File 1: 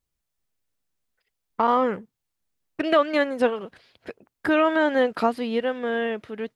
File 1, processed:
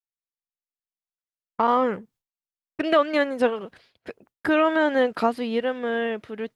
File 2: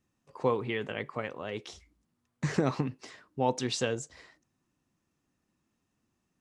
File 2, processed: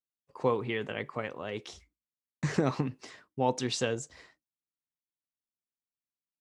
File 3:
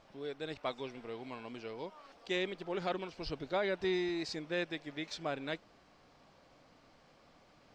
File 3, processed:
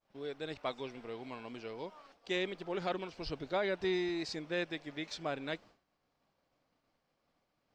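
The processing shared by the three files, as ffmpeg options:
-af "agate=range=0.0224:threshold=0.00251:ratio=3:detection=peak"

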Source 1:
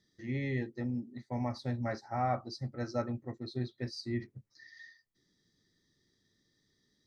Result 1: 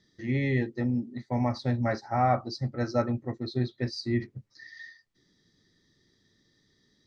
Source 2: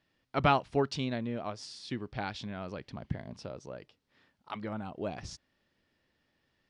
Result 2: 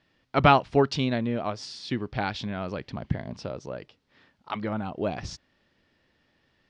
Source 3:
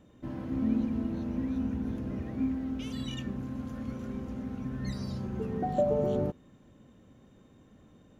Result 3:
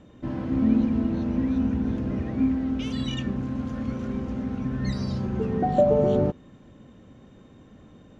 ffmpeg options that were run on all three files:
-af "lowpass=6100,volume=2.37"

